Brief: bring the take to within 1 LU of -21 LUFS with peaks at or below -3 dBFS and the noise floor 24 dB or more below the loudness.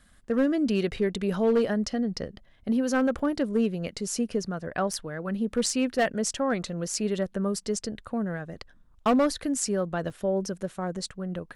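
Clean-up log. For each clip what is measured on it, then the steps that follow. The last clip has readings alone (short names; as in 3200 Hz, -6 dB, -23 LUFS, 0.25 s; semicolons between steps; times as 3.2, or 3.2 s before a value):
clipped 0.5%; flat tops at -17.0 dBFS; dropouts 4; longest dropout 3.7 ms; loudness -28.0 LUFS; peak -17.0 dBFS; loudness target -21.0 LUFS
-> clip repair -17 dBFS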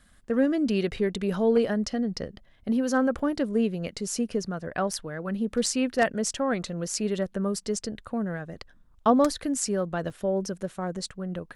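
clipped 0.0%; dropouts 4; longest dropout 3.7 ms
-> interpolate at 3.19/4.93/5.66/10.1, 3.7 ms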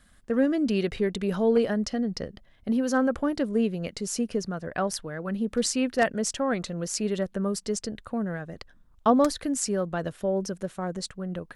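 dropouts 0; loudness -27.5 LUFS; peak -8.5 dBFS; loudness target -21.0 LUFS
-> gain +6.5 dB; limiter -3 dBFS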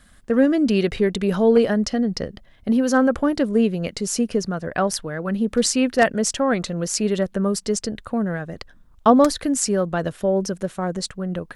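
loudness -21.0 LUFS; peak -3.0 dBFS; noise floor -52 dBFS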